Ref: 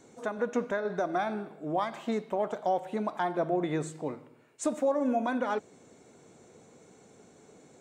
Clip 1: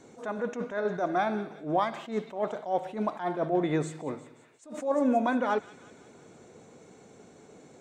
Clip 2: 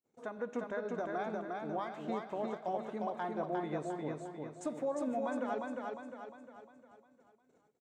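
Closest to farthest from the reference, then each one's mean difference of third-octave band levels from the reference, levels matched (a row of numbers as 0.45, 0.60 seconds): 1, 2; 3.0, 6.5 decibels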